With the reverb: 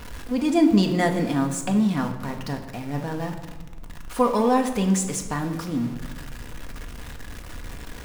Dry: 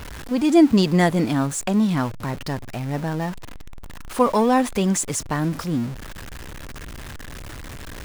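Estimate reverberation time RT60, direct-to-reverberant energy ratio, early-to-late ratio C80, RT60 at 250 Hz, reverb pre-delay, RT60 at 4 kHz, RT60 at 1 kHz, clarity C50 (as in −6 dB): 1.2 s, 3.5 dB, 11.0 dB, 1.6 s, 4 ms, 0.75 s, 1.2 s, 8.5 dB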